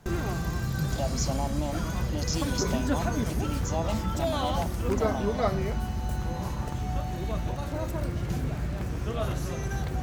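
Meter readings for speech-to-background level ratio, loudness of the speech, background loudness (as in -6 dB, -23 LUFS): -5.0 dB, -35.5 LUFS, -30.5 LUFS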